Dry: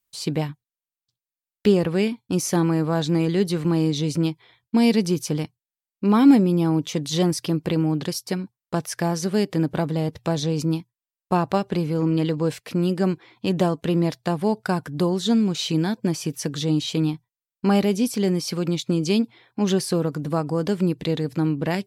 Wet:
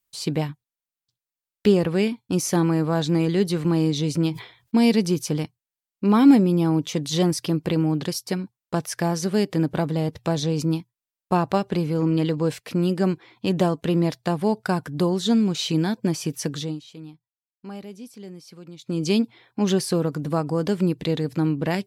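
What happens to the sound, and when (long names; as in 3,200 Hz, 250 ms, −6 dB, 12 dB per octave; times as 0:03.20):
0:04.28–0:04.77: level that may fall only so fast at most 120 dB per second
0:16.51–0:19.07: duck −18 dB, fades 0.29 s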